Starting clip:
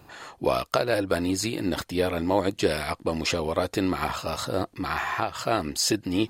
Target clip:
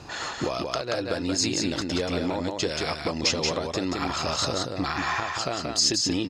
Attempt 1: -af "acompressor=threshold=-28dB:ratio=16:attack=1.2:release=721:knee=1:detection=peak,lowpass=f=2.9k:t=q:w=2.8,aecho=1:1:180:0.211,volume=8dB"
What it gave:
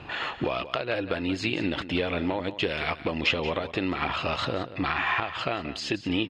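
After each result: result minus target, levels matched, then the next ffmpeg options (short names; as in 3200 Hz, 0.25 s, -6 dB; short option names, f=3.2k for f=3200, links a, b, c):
8000 Hz band -19.0 dB; echo-to-direct -9.5 dB
-af "acompressor=threshold=-28dB:ratio=16:attack=1.2:release=721:knee=1:detection=peak,lowpass=f=5.9k:t=q:w=2.8,aecho=1:1:180:0.211,volume=8dB"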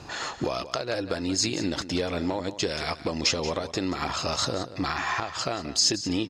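echo-to-direct -9.5 dB
-af "acompressor=threshold=-28dB:ratio=16:attack=1.2:release=721:knee=1:detection=peak,lowpass=f=5.9k:t=q:w=2.8,aecho=1:1:180:0.631,volume=8dB"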